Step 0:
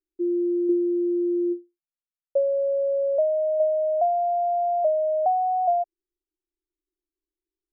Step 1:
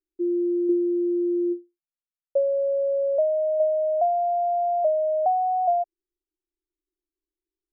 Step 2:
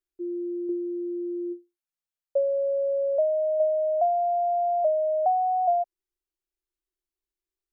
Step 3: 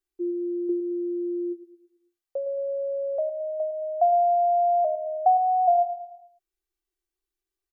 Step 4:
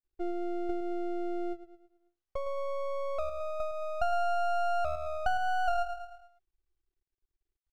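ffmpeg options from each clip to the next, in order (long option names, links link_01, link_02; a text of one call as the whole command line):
ffmpeg -i in.wav -af anull out.wav
ffmpeg -i in.wav -af "equalizer=frequency=280:width=1.8:gain=-12.5" out.wav
ffmpeg -i in.wav -filter_complex "[0:a]aecho=1:1:2.6:0.68,asplit=2[link_01][link_02];[link_02]aecho=0:1:110|220|330|440|550:0.282|0.124|0.0546|0.024|0.0106[link_03];[link_01][link_03]amix=inputs=2:normalize=0" out.wav
ffmpeg -i in.wav -filter_complex "[0:a]acrossover=split=310|800[link_01][link_02][link_03];[link_01]acompressor=threshold=-43dB:ratio=4[link_04];[link_02]acompressor=threshold=-30dB:ratio=4[link_05];[link_03]acompressor=threshold=-27dB:ratio=4[link_06];[link_04][link_05][link_06]amix=inputs=3:normalize=0,aemphasis=mode=reproduction:type=bsi,aeval=exprs='max(val(0),0)':channel_layout=same,volume=-1.5dB" out.wav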